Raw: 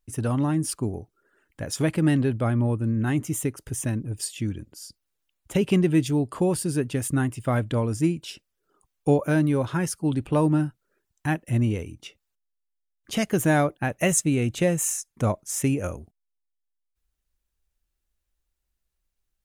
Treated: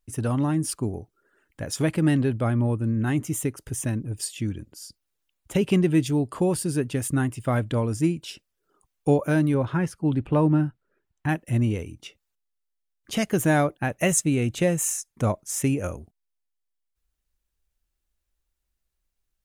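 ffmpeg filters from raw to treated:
-filter_complex "[0:a]asettb=1/sr,asplit=3[a][b][c];[a]atrim=end=9.544[d];[b]atrim=start=9.54:end=11.29,asetpts=PTS-STARTPTS,afade=t=in:d=0.004:c=qsin,afade=t=out:st=1.746:d=0.004:c=qsin,bass=f=250:g=2,treble=f=4k:g=-13[e];[c]atrim=start=11.286[f];[d][e]acrossfade=d=0.004:c1=hsin:c2=qsin[g];[g][f]acrossfade=d=0.004:c1=qsin:c2=hsin"

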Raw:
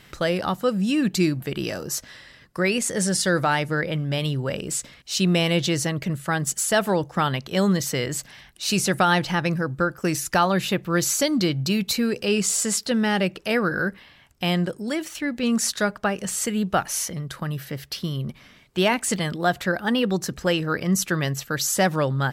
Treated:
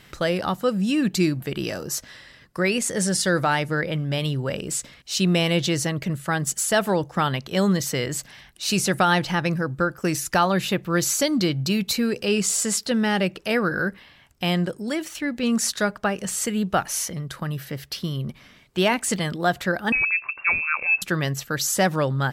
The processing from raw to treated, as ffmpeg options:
-filter_complex "[0:a]asettb=1/sr,asplit=3[a][b][c];[a]atrim=end=19.924[d];[b]atrim=start=19.92:end=21.02,asetpts=PTS-STARTPTS,afade=t=in:d=0.004:c=qsin,afade=t=out:st=1.096:d=0.004:c=qsin,lowpass=f=2.4k:t=q:w=0.5098,lowpass=f=2.4k:t=q:w=0.6013,lowpass=f=2.4k:t=q:w=0.9,lowpass=f=2.4k:t=q:w=2.563,afreqshift=-2800[e];[c]atrim=start=21.016[f];[d][e]acrossfade=d=0.004:c1=hsin:c2=qsin[g];[g][f]acrossfade=d=0.004:c1=qsin:c2=hsin"

